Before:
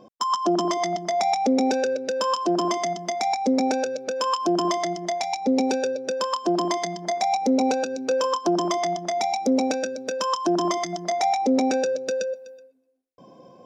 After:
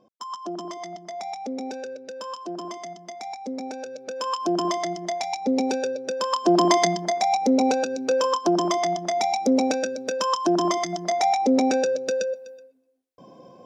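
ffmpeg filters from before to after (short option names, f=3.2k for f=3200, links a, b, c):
-af "volume=8dB,afade=t=in:st=3.77:d=0.76:silence=0.334965,afade=t=in:st=6.18:d=0.69:silence=0.334965,afade=t=out:st=6.87:d=0.24:silence=0.446684"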